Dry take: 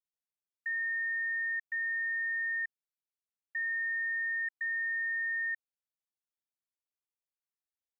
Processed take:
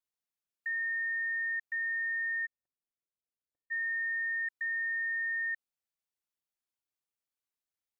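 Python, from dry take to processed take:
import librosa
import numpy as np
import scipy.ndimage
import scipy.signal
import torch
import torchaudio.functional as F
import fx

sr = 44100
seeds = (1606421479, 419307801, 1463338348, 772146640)

y = fx.cheby2_lowpass(x, sr, hz=1700.0, order=4, stop_db=50, at=(2.45, 3.7), fade=0.02)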